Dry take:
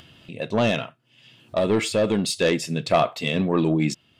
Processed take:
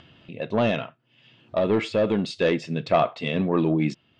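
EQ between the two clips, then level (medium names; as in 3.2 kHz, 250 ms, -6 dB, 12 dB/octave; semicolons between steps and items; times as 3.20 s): low-pass 3.9 kHz 6 dB/octave; distance through air 120 m; bass shelf 140 Hz -3.5 dB; 0.0 dB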